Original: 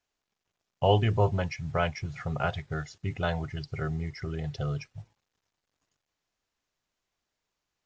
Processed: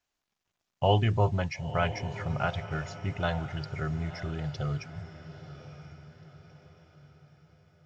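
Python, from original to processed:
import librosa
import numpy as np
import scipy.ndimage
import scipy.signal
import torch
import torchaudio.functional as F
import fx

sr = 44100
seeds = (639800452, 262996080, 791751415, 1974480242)

y = fx.peak_eq(x, sr, hz=450.0, db=-4.5, octaves=0.41)
y = fx.echo_diffused(y, sr, ms=967, feedback_pct=45, wet_db=-12.5)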